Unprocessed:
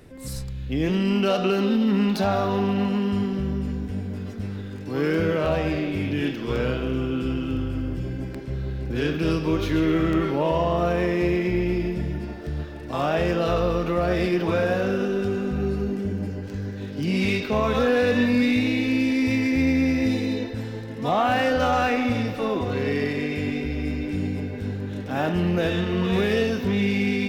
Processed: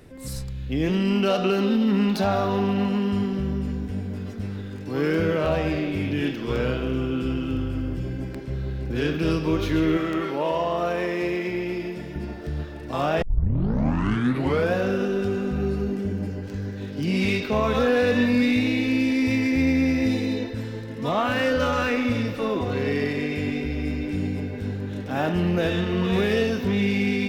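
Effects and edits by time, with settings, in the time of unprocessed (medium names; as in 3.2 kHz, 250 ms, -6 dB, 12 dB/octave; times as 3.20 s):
9.97–12.16 s: high-pass 390 Hz 6 dB/octave
13.22 s: tape start 1.51 s
20.50–22.58 s: band-stop 760 Hz, Q 5.8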